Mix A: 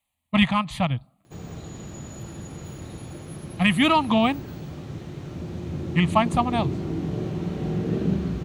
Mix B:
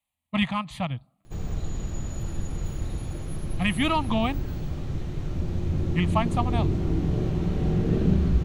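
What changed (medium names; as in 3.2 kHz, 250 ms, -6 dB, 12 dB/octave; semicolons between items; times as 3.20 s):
speech -5.5 dB; background: remove high-pass 130 Hz 12 dB/octave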